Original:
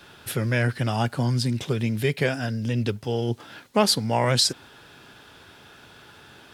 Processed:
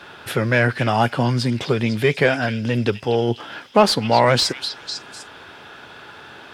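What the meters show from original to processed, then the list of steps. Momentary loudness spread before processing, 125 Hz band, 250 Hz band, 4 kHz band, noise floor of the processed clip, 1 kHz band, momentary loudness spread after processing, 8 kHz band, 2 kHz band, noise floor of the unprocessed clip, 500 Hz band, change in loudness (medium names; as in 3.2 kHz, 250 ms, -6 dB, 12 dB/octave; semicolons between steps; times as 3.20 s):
8 LU, +2.0 dB, +5.0 dB, +3.0 dB, -42 dBFS, +9.0 dB, 18 LU, -1.5 dB, +8.0 dB, -50 dBFS, +7.5 dB, +5.0 dB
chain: repeats whose band climbs or falls 250 ms, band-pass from 3.3 kHz, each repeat 0.7 oct, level -7.5 dB; overdrive pedal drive 11 dB, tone 1.5 kHz, clips at -6.5 dBFS; trim +6.5 dB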